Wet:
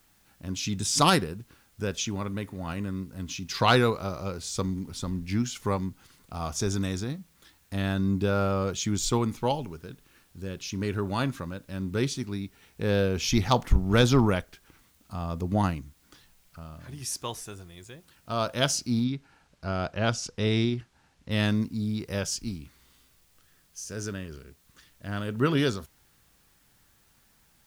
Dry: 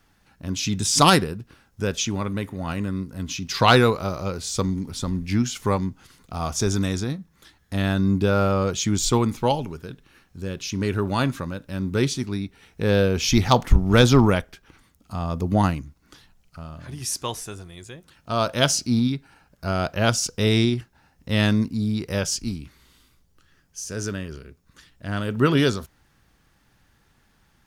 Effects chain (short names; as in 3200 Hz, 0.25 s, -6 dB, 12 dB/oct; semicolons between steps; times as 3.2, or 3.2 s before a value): requantised 10-bit, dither triangular; 19.04–21.31 air absorption 69 m; gain -5.5 dB